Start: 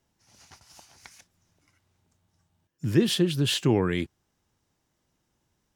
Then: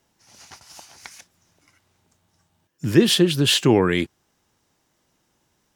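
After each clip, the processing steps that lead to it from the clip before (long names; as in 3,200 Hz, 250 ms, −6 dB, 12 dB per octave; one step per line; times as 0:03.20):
low-shelf EQ 160 Hz −9 dB
level +8.5 dB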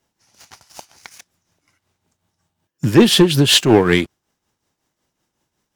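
leveller curve on the samples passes 2
shaped tremolo triangle 5.4 Hz, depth 65%
level +2.5 dB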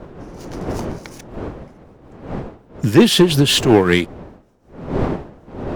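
wind on the microphone 430 Hz −29 dBFS
de-essing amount 30%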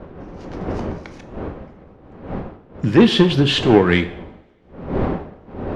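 low-pass filter 3,400 Hz 12 dB per octave
coupled-rooms reverb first 0.62 s, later 2.3 s, from −28 dB, DRR 8.5 dB
level −1 dB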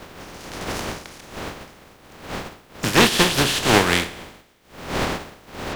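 compressing power law on the bin magnitudes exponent 0.38
level −3.5 dB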